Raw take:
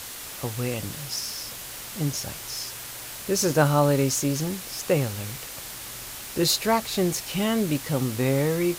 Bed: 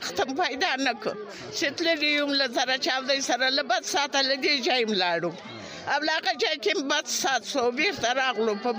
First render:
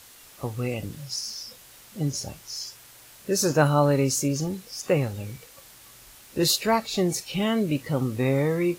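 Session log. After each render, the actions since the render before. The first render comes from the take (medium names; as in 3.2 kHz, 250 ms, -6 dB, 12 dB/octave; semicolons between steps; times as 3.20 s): noise print and reduce 12 dB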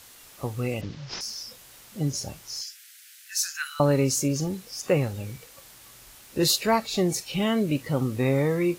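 0.81–1.21 s: CVSD coder 32 kbps; 2.61–3.80 s: steep high-pass 1.5 kHz 48 dB/octave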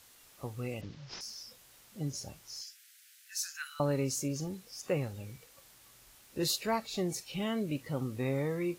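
trim -9.5 dB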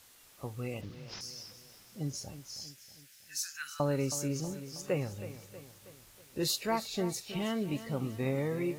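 bit-crushed delay 320 ms, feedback 55%, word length 10-bit, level -13 dB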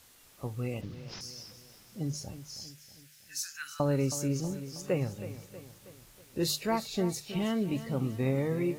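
bass shelf 350 Hz +5.5 dB; hum notches 50/100/150 Hz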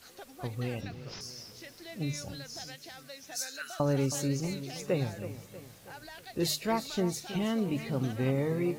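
add bed -22.5 dB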